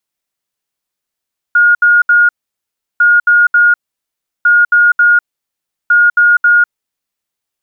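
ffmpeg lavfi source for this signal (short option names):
-f lavfi -i "aevalsrc='0.596*sin(2*PI*1430*t)*clip(min(mod(mod(t,1.45),0.27),0.2-mod(mod(t,1.45),0.27))/0.005,0,1)*lt(mod(t,1.45),0.81)':d=5.8:s=44100"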